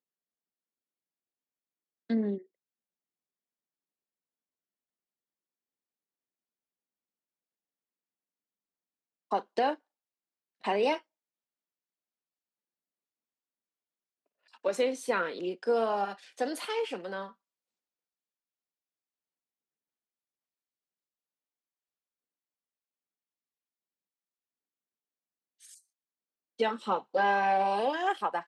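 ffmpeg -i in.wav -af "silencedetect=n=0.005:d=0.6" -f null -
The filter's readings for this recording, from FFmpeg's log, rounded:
silence_start: 0.00
silence_end: 2.10 | silence_duration: 2.10
silence_start: 2.42
silence_end: 9.31 | silence_duration: 6.89
silence_start: 9.75
silence_end: 10.64 | silence_duration: 0.89
silence_start: 11.00
silence_end: 14.54 | silence_duration: 3.54
silence_start: 17.31
silence_end: 25.63 | silence_duration: 8.32
silence_start: 25.76
silence_end: 26.59 | silence_duration: 0.83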